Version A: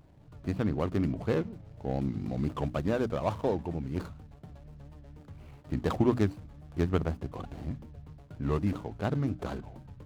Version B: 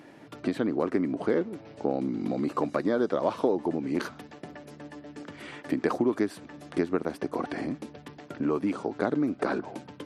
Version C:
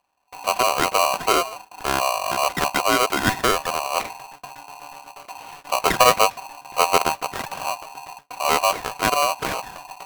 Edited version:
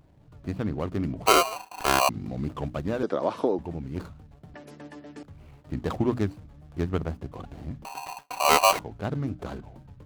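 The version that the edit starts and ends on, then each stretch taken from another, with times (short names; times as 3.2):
A
1.26–2.09 from C
3.03–3.59 from B
4.54–5.23 from B
7.85–8.79 from C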